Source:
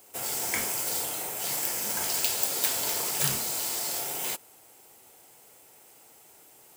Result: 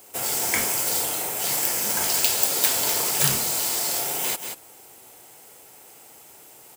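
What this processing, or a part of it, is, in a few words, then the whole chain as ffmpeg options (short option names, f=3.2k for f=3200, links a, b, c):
ducked delay: -filter_complex "[0:a]asplit=3[a][b][c];[b]adelay=183,volume=-7dB[d];[c]apad=whole_len=306533[e];[d][e]sidechaincompress=threshold=-41dB:ratio=8:attack=6.5:release=111[f];[a][f]amix=inputs=2:normalize=0,volume=6dB"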